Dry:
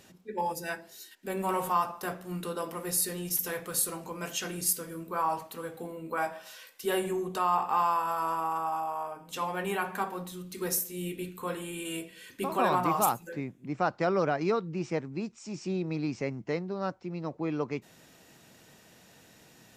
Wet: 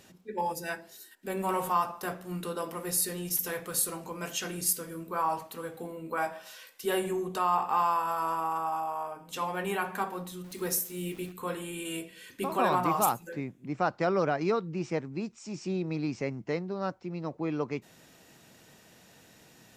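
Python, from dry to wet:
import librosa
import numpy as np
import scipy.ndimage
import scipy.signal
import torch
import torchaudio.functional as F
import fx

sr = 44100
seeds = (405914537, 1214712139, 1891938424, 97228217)

y = fx.spec_box(x, sr, start_s=0.97, length_s=0.26, low_hz=1900.0, high_hz=7300.0, gain_db=-6)
y = fx.sample_gate(y, sr, floor_db=-47.5, at=(10.44, 11.32))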